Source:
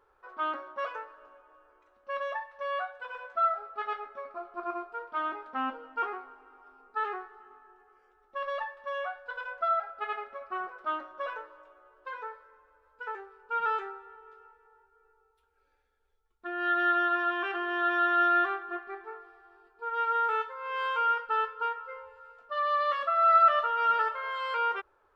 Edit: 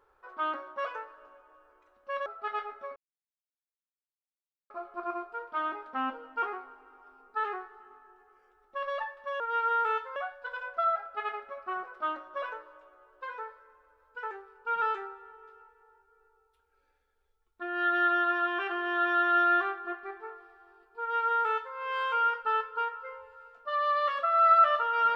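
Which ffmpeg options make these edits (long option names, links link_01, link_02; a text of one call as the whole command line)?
ffmpeg -i in.wav -filter_complex "[0:a]asplit=5[link_01][link_02][link_03][link_04][link_05];[link_01]atrim=end=2.262[link_06];[link_02]atrim=start=3.598:end=4.3,asetpts=PTS-STARTPTS,afade=type=out:start_time=0.698:duration=0.004:curve=hsin,apad=pad_dur=1.74[link_07];[link_03]atrim=start=4.3:end=9.002,asetpts=PTS-STARTPTS,afade=type=in:duration=0.004:curve=hsin[link_08];[link_04]atrim=start=19.838:end=20.602[link_09];[link_05]atrim=start=8.998[link_10];[link_07][link_08]concat=n=2:v=0:a=1[link_11];[link_06][link_11]acrossfade=duration=0.004:curve1=hsin:curve2=hsin[link_12];[link_12][link_09]acrossfade=duration=0.004:curve1=hsin:curve2=hsin[link_13];[link_13][link_10]acrossfade=duration=0.004:curve1=hsin:curve2=hsin" out.wav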